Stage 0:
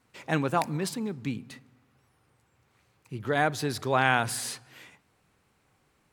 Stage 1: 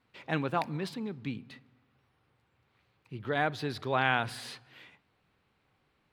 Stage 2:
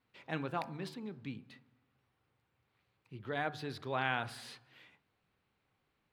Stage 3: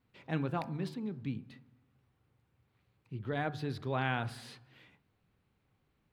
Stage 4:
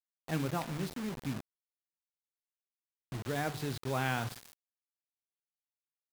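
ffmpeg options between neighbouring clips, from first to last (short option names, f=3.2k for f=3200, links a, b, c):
-af "highshelf=f=5.2k:t=q:w=1.5:g=-10,volume=-4.5dB"
-af "bandreject=f=75.09:t=h:w=4,bandreject=f=150.18:t=h:w=4,bandreject=f=225.27:t=h:w=4,bandreject=f=300.36:t=h:w=4,bandreject=f=375.45:t=h:w=4,bandreject=f=450.54:t=h:w=4,bandreject=f=525.63:t=h:w=4,bandreject=f=600.72:t=h:w=4,bandreject=f=675.81:t=h:w=4,bandreject=f=750.9:t=h:w=4,bandreject=f=825.99:t=h:w=4,bandreject=f=901.08:t=h:w=4,bandreject=f=976.17:t=h:w=4,bandreject=f=1.05126k:t=h:w=4,bandreject=f=1.12635k:t=h:w=4,bandreject=f=1.20144k:t=h:w=4,bandreject=f=1.27653k:t=h:w=4,bandreject=f=1.35162k:t=h:w=4,bandreject=f=1.42671k:t=h:w=4,bandreject=f=1.5018k:t=h:w=4,bandreject=f=1.57689k:t=h:w=4,bandreject=f=1.65198k:t=h:w=4,bandreject=f=1.72707k:t=h:w=4,volume=-6.5dB"
-af "lowshelf=f=330:g=11,volume=-1.5dB"
-af "acrusher=bits=6:mix=0:aa=0.000001"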